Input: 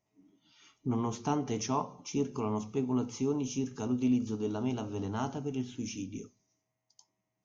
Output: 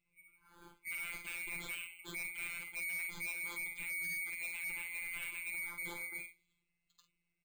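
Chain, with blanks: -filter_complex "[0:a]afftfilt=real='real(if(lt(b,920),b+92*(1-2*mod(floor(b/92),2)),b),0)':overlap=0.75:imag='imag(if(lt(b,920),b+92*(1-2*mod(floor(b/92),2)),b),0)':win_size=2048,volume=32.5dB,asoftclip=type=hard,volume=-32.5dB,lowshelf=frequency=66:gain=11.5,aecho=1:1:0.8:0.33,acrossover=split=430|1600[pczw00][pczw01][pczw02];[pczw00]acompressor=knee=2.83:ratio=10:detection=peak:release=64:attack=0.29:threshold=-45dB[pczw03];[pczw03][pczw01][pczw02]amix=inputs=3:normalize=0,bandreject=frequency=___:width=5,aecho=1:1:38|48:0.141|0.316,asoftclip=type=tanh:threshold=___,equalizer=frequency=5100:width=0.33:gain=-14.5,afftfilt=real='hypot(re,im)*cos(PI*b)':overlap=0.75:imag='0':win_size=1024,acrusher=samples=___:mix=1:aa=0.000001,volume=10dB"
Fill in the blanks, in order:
710, -36.5dB, 4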